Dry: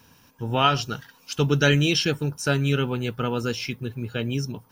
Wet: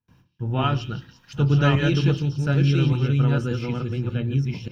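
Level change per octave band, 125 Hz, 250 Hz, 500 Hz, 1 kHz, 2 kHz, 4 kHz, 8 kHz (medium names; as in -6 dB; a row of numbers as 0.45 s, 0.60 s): +6.0 dB, +2.5 dB, -2.0 dB, -3.5 dB, -4.0 dB, -6.5 dB, under -10 dB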